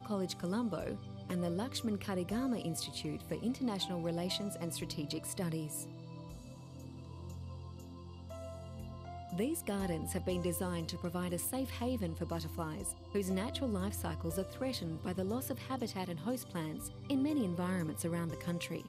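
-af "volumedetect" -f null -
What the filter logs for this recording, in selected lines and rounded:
mean_volume: -38.2 dB
max_volume: -23.5 dB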